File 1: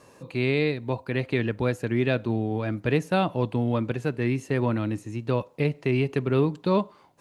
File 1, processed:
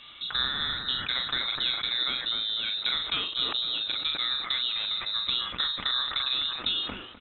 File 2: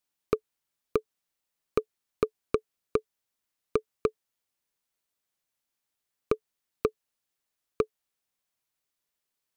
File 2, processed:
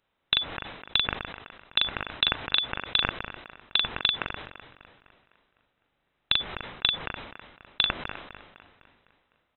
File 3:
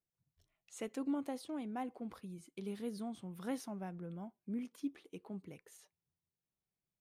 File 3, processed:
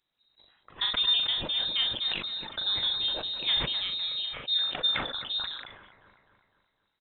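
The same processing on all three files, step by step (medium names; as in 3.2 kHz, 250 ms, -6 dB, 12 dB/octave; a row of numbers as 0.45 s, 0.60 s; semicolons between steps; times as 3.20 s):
treble shelf 2.7 kHz +9.5 dB; compression 10:1, threshold -31 dBFS; doubling 40 ms -7.5 dB; feedback echo behind a high-pass 253 ms, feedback 49%, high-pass 2.3 kHz, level -3.5 dB; frequency inversion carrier 3.9 kHz; decay stretcher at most 55 dB/s; normalise loudness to -27 LUFS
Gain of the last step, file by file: +4.0 dB, +9.5 dB, +11.0 dB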